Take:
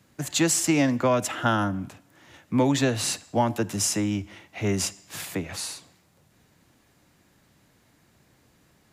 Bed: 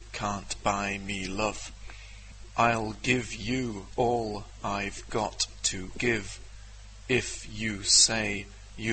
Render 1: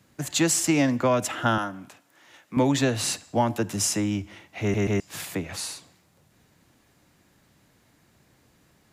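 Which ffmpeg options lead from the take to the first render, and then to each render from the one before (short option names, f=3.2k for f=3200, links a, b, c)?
-filter_complex "[0:a]asettb=1/sr,asplit=3[a][b][c];[a]atrim=end=1.584[d];[b]atrim=start=1.58:end=2.57,asetpts=PTS-STARTPTS,afade=t=in:d=0.004:c=qsin,afade=t=out:st=0.986:d=0.004:c=qsin,highpass=f=610:p=1[e];[c]atrim=start=2.566[f];[d][e]acrossfade=d=0.004:c1=hsin:c2=qsin[g];[g][f]acrossfade=d=0.004:c1=qsin:c2=hsin,asplit=4[h][i][j][k];[h]atrim=end=4.742[l];[i]atrim=start=4.608:end=4.742[m];[j]atrim=start=4.608:end=4.742[n];[k]atrim=start=4.998[o];[l][m]acrossfade=d=0.004:c1=hsin:c2=hsin[p];[p][n]acrossfade=d=0.004:c1=hsin:c2=hsin[q];[q][o]acrossfade=d=0.004:c1=hsin:c2=hsin"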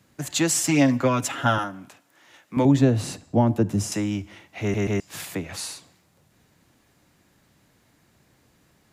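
-filter_complex "[0:a]asettb=1/sr,asplit=3[a][b][c];[a]atrim=end=0.554[d];[b]atrim=start=0.55:end=1.64,asetpts=PTS-STARTPTS,afade=t=in:d=0.004:c=qsin,afade=t=out:st=1.086:d=0.004:c=qsin,aecho=1:1:7.3:0.65,atrim=end_sample=48069[e];[c]atrim=start=1.636[f];[d][e]acrossfade=d=0.004:c1=hsin:c2=qsin[g];[g][f]acrossfade=d=0.004:c1=qsin:c2=hsin,asettb=1/sr,asplit=3[h][i][j];[h]atrim=end=2.654[k];[i]atrim=start=2.65:end=3.92,asetpts=PTS-STARTPTS,afade=t=in:d=0.004:c=qsin,afade=t=out:st=1.266:d=0.004:c=qsin,tiltshelf=f=680:g=8.5[l];[j]atrim=start=3.916[m];[k][l]acrossfade=d=0.004:c1=hsin:c2=qsin[n];[n][m]acrossfade=d=0.004:c1=qsin:c2=hsin"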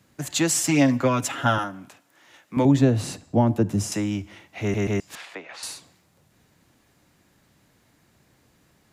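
-filter_complex "[0:a]asettb=1/sr,asplit=3[a][b][c];[a]atrim=end=5.154[d];[b]atrim=start=5.15:end=5.63,asetpts=PTS-STARTPTS,afade=t=in:d=0.004:c=qsin,afade=t=out:st=0.476:d=0.004:c=qsin,highpass=590,lowpass=3.4k[e];[c]atrim=start=5.626[f];[d][e]acrossfade=d=0.004:c1=hsin:c2=qsin[g];[g][f]acrossfade=d=0.004:c1=qsin:c2=hsin"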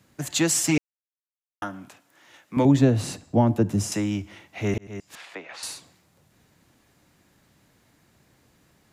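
-filter_complex "[0:a]asplit=4[a][b][c][d];[a]atrim=end=0.78,asetpts=PTS-STARTPTS,afade=t=out:st=0.776:d=0.004:c=hsin[e];[b]atrim=start=0.78:end=1.62,asetpts=PTS-STARTPTS,volume=0[f];[c]atrim=start=1.62:end=4.78,asetpts=PTS-STARTPTS,afade=t=in:d=0.004:c=hsin,afade=t=out:st=3.156:d=0.004:c=hsin[g];[d]atrim=start=4.78,asetpts=PTS-STARTPTS,afade=t=in:d=0.63[h];[e][f][g][h]concat=n=4:v=0:a=1"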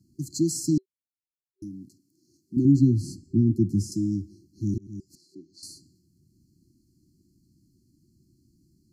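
-af "afftfilt=real='re*(1-between(b*sr/4096,380,4100))':imag='im*(1-between(b*sr/4096,380,4100))':win_size=4096:overlap=0.75,highshelf=f=3.1k:g=-10"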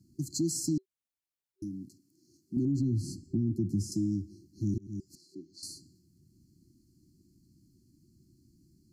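-af "alimiter=limit=-17.5dB:level=0:latency=1:release=32,acompressor=threshold=-33dB:ratio=1.5"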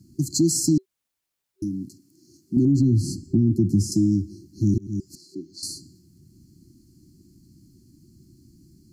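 -af "volume=10.5dB"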